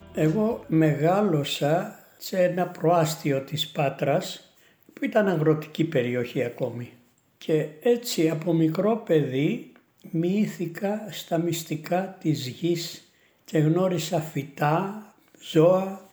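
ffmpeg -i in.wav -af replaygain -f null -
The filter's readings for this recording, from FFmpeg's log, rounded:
track_gain = +4.8 dB
track_peak = 0.279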